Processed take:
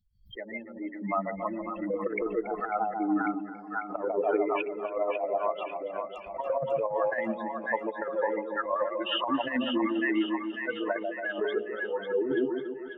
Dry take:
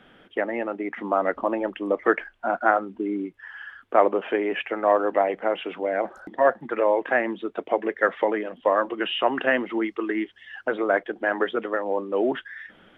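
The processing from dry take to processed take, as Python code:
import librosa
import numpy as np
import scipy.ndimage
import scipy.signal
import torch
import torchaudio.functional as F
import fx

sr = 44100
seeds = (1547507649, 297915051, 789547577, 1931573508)

y = fx.bin_expand(x, sr, power=3.0)
y = fx.hum_notches(y, sr, base_hz=60, count=9)
y = fx.echo_split(y, sr, split_hz=850.0, low_ms=143, high_ms=546, feedback_pct=52, wet_db=-6)
y = fx.over_compress(y, sr, threshold_db=-30.0, ratio=-0.5)
y = fx.lowpass(y, sr, hz=2500.0, slope=6)
y = fx.low_shelf(y, sr, hz=330.0, db=3.0)
y = fx.notch(y, sr, hz=1600.0, q=17.0)
y = fx.echo_feedback(y, sr, ms=281, feedback_pct=59, wet_db=-15.5)
y = fx.pre_swell(y, sr, db_per_s=140.0)
y = y * librosa.db_to_amplitude(3.0)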